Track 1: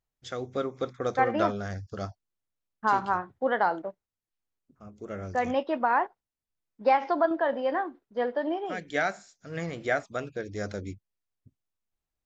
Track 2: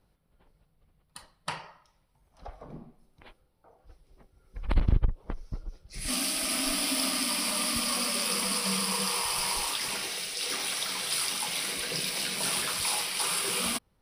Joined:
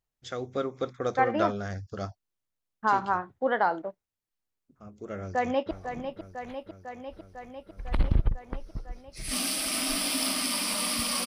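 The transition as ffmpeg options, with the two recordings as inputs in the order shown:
-filter_complex "[0:a]apad=whole_dur=11.26,atrim=end=11.26,atrim=end=5.712[s0];[1:a]atrim=start=2.478:end=8.03[s1];[s0][s1]acrossfade=d=0.004:c1=hsin:c2=hsin,asplit=2[s2][s3];[s3]afade=t=in:st=5.16:d=0.01,afade=t=out:st=5.71:d=0.01,aecho=0:1:500|1000|1500|2000|2500|3000|3500|4000|4500|5000|5500|6000:0.375837|0.281878|0.211409|0.158556|0.118917|0.089188|0.066891|0.0501682|0.0376262|0.0282196|0.0211647|0.0158735[s4];[s2][s4]amix=inputs=2:normalize=0"

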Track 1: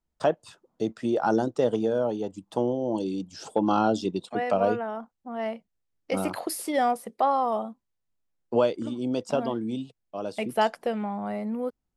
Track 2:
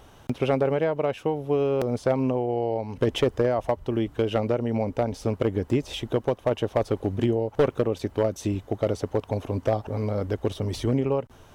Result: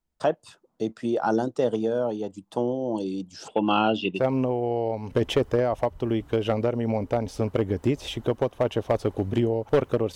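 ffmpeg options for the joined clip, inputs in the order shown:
-filter_complex "[0:a]asettb=1/sr,asplit=3[s0][s1][s2];[s0]atrim=end=3.484[s3];[s1]atrim=start=3.48:end=4.24,asetpts=PTS-STARTPTS,afade=t=in:d=0.004:c=qsin,afade=t=out:st=0.756:d=0.004:c=qsin,lowpass=f=2800:t=q:w=9.2[s4];[s2]atrim=start=4.236[s5];[s3][s4]acrossfade=d=0.004:c1=hsin:c2=qsin[s6];[s6][s5]acrossfade=d=0.004:c1=qsin:c2=hsin,apad=whole_dur=10.15,atrim=end=10.15,atrim=end=4.24,asetpts=PTS-STARTPTS[s7];[1:a]atrim=start=2:end=8.01,asetpts=PTS-STARTPTS[s8];[s7][s8]acrossfade=d=0.1:c1=tri:c2=tri"

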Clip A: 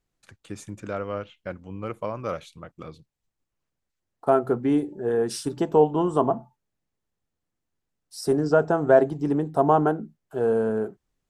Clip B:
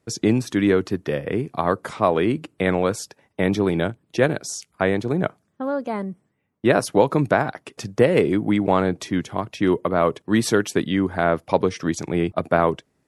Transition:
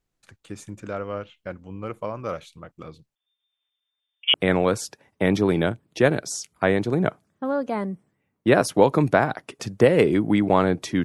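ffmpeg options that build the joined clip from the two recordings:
-filter_complex "[0:a]asettb=1/sr,asplit=3[s0][s1][s2];[s0]atrim=end=3.154[s3];[s1]atrim=start=3.15:end=4.34,asetpts=PTS-STARTPTS,afade=t=in:d=0.004:c=qsin,afade=t=out:st=1.186:d=0.004:c=qsin,lowpass=f=3100:t=q:w=0.5098,lowpass=f=3100:t=q:w=0.6013,lowpass=f=3100:t=q:w=0.9,lowpass=f=3100:t=q:w=2.563,afreqshift=-3600[s4];[s2]atrim=start=4.336[s5];[s3][s4]acrossfade=d=0.004:c1=hsin:c2=qsin[s6];[s6][s5]acrossfade=d=0.004:c1=qsin:c2=hsin,apad=whole_dur=11.04,atrim=end=11.04,atrim=end=4.342[s7];[1:a]atrim=start=2.518:end=9.22[s8];[s7][s8]acrossfade=d=0.004:c1=hsin:c2=hsin"

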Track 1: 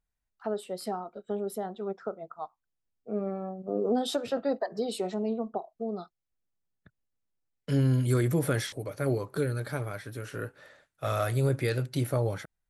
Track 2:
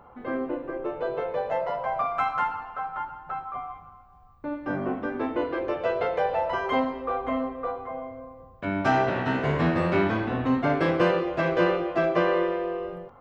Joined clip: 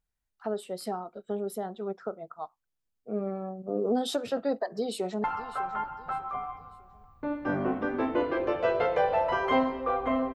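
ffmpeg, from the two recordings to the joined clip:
-filter_complex "[0:a]apad=whole_dur=10.34,atrim=end=10.34,atrim=end=5.242[s0];[1:a]atrim=start=2.448:end=7.55[s1];[s0][s1]acrossfade=d=0.004:c1=hsin:c2=hsin,asplit=2[s2][s3];[s3]afade=t=in:st=4.53:d=0.01,afade=t=out:st=5.24:d=0.01,aecho=0:1:600|1200|1800:0.158489|0.0554713|0.0194149[s4];[s2][s4]amix=inputs=2:normalize=0"

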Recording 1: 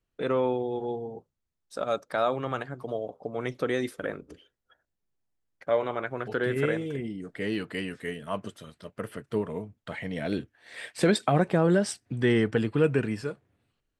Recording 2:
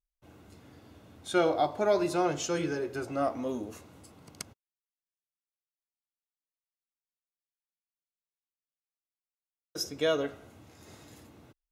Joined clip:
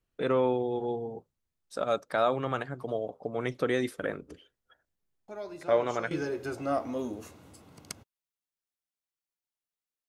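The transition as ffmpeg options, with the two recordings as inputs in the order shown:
-filter_complex "[1:a]asplit=2[s0][s1];[0:a]apad=whole_dur=10.08,atrim=end=10.08,atrim=end=6.112[s2];[s1]atrim=start=2.608:end=6.58[s3];[s0]atrim=start=1.78:end=2.61,asetpts=PTS-STARTPTS,volume=0.188,afade=t=in:d=0.004:c=hsin,afade=t=out:st=0.826:d=0.004:c=hsin,adelay=5280[s4];[s2][s3]acrossfade=d=0.004:c1=hsin:c2=hsin[s5];[s5][s4]amix=inputs=2:normalize=0"

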